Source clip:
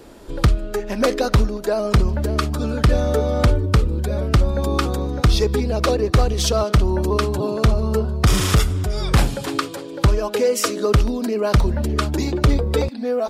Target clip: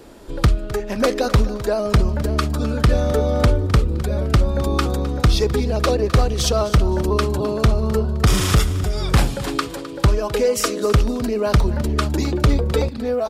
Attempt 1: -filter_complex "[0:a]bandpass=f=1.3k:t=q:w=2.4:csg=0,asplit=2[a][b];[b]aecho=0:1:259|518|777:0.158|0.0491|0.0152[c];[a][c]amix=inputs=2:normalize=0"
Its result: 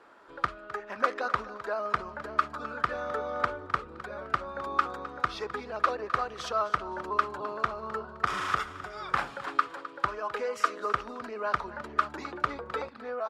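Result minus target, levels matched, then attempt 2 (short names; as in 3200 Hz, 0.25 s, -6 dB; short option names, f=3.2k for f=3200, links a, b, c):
1000 Hz band +10.0 dB
-filter_complex "[0:a]asplit=2[a][b];[b]aecho=0:1:259|518|777:0.158|0.0491|0.0152[c];[a][c]amix=inputs=2:normalize=0"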